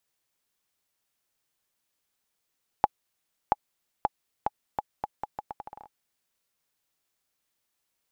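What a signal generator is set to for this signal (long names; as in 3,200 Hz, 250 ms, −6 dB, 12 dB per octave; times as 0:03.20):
bouncing ball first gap 0.68 s, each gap 0.78, 838 Hz, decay 31 ms −6.5 dBFS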